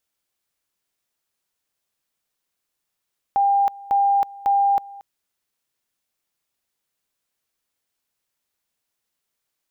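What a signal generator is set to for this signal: two-level tone 799 Hz -14.5 dBFS, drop 21.5 dB, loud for 0.32 s, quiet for 0.23 s, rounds 3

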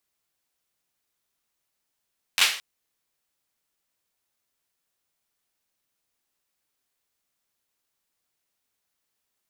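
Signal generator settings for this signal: hand clap length 0.22 s, apart 11 ms, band 2700 Hz, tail 0.44 s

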